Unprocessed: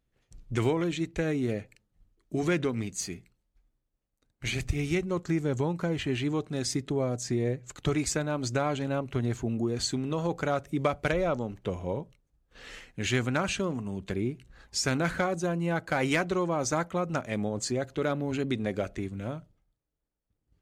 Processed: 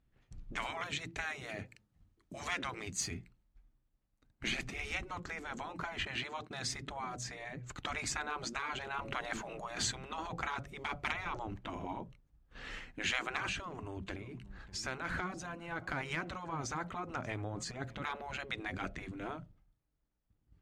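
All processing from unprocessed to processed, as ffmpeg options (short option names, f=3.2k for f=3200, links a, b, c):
-filter_complex "[0:a]asettb=1/sr,asplit=3[a][b][c];[a]atrim=end=0.704[d];[b]atrim=start=0.7:end=3.11,asetpts=PTS-STARTPTS,afade=t=in:d=0.004:c=qsin,afade=t=out:st=2.406:d=0.004:c=qsin,highpass=54,bass=f=250:g=-1,treble=f=4k:g=5[e];[c]atrim=start=3.106[f];[d][e]acrossfade=d=0.004:c1=hsin:c2=qsin[g];[g][f]acrossfade=d=0.004:c1=qsin:c2=hsin,asettb=1/sr,asplit=3[h][i][j];[h]atrim=end=6.054[k];[i]atrim=start=6.05:end=6.69,asetpts=PTS-STARTPTS,afade=t=in:d=0.004:c=qsin,afade=t=out:st=0.636:d=0.004:c=qsin,agate=range=-33dB:threshold=-42dB:ratio=3:release=100:detection=peak,highpass=f=180:p=1,equalizer=f=4.2k:t=o:w=0.28:g=4[l];[j]atrim=start=6.686[m];[k][l]acrossfade=d=0.004:c1=hsin:c2=qsin[n];[n][m]acrossfade=d=0.004:c1=qsin:c2=hsin,asettb=1/sr,asplit=3[o][p][q];[o]atrim=end=8.994[r];[p]atrim=start=8.99:end=9.92,asetpts=PTS-STARTPTS,afade=t=in:d=0.004:c=qsin,afade=t=out:st=0.926:d=0.004:c=qsin,bandreject=f=110.3:t=h:w=4,bandreject=f=220.6:t=h:w=4,bandreject=f=330.9:t=h:w=4,bandreject=f=441.2:t=h:w=4,bandreject=f=551.5:t=h:w=4,bandreject=f=661.8:t=h:w=4,bandreject=f=772.1:t=h:w=4,acontrast=37[s];[q]atrim=start=9.916[t];[r][s]acrossfade=d=0.004:c1=hsin:c2=qsin[u];[u][t]acrossfade=d=0.004:c1=qsin:c2=hsin,asettb=1/sr,asplit=3[v][w][x];[v]atrim=end=13.484[y];[w]atrim=start=13.48:end=18.03,asetpts=PTS-STARTPTS,afade=t=in:d=0.004:c=qsin,afade=t=out:st=4.546:d=0.004:c=qsin,acompressor=threshold=-31dB:ratio=6:attack=3.2:release=140:knee=1:detection=peak,aecho=1:1:587:0.0631,atrim=end_sample=200655[z];[x]atrim=start=18.026[aa];[y][z]acrossfade=d=0.004:c1=hsin:c2=qsin[ab];[ab][aa]acrossfade=d=0.004:c1=qsin:c2=hsin,lowpass=f=1.9k:p=1,afftfilt=real='re*lt(hypot(re,im),0.0794)':imag='im*lt(hypot(re,im),0.0794)':win_size=1024:overlap=0.75,equalizer=f=480:w=1.5:g=-7,volume=4dB"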